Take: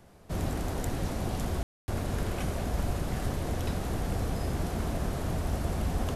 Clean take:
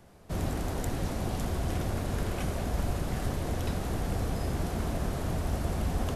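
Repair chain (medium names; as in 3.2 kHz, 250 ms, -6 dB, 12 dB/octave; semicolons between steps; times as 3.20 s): room tone fill 1.63–1.88 s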